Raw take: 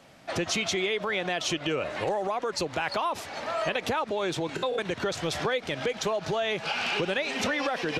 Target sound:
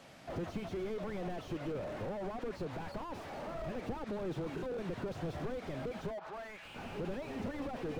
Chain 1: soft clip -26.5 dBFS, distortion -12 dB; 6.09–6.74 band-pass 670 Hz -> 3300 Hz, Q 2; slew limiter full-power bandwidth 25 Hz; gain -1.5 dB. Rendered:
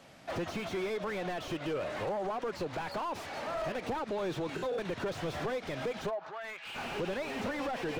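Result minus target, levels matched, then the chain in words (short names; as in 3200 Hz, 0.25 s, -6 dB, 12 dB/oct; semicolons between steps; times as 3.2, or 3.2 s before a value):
slew limiter: distortion -10 dB
soft clip -26.5 dBFS, distortion -12 dB; 6.09–6.74 band-pass 670 Hz -> 3300 Hz, Q 2; slew limiter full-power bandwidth 8 Hz; gain -1.5 dB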